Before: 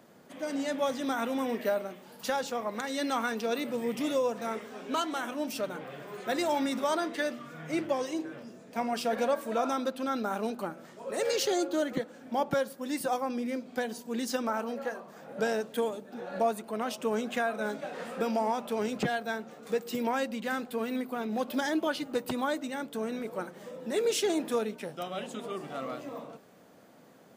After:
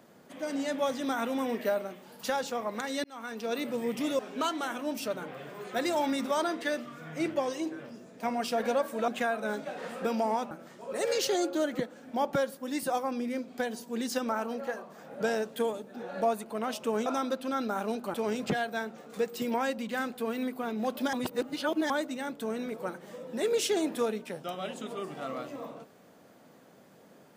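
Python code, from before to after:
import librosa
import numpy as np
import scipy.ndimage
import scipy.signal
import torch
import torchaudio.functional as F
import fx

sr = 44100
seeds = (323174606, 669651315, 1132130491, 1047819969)

y = fx.edit(x, sr, fx.fade_in_span(start_s=3.04, length_s=0.58),
    fx.cut(start_s=4.19, length_s=0.53),
    fx.swap(start_s=9.61, length_s=1.08, other_s=17.24, other_length_s=1.43),
    fx.reverse_span(start_s=21.66, length_s=0.77), tone=tone)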